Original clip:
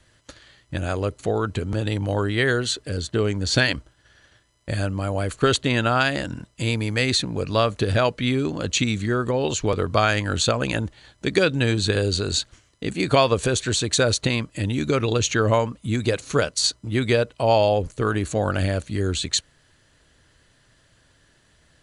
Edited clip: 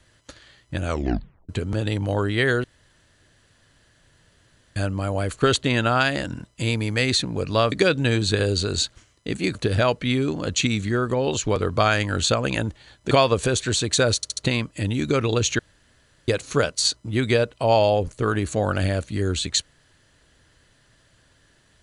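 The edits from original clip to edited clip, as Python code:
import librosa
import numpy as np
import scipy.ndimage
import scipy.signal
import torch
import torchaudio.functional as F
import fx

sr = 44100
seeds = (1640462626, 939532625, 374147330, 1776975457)

y = fx.edit(x, sr, fx.tape_stop(start_s=0.85, length_s=0.64),
    fx.room_tone_fill(start_s=2.64, length_s=2.12),
    fx.move(start_s=11.28, length_s=1.83, to_s=7.72),
    fx.stutter(start_s=14.16, slice_s=0.07, count=4),
    fx.room_tone_fill(start_s=15.38, length_s=0.69), tone=tone)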